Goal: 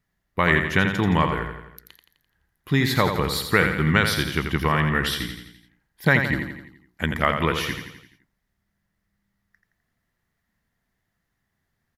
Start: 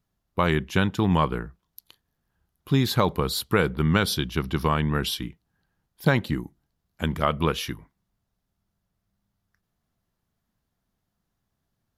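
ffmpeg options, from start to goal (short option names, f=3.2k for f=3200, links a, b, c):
-filter_complex "[0:a]equalizer=f=1.9k:t=o:w=0.44:g=14,asplit=2[a][b];[b]aecho=0:1:85|170|255|340|425|510:0.447|0.232|0.121|0.0628|0.0327|0.017[c];[a][c]amix=inputs=2:normalize=0"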